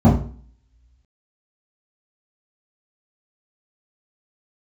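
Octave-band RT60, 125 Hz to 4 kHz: 0.50, 0.50, 0.45, 0.40, 0.45, 2.1 seconds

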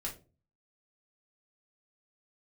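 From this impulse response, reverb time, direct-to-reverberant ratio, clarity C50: 0.35 s, −3.5 dB, 11.0 dB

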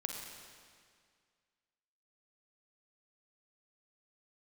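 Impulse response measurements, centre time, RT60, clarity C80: 75 ms, 2.0 s, 3.5 dB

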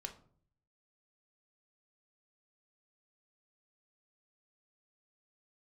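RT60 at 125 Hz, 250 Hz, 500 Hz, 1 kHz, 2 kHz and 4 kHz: 0.95, 0.70, 0.60, 0.45, 0.35, 0.30 seconds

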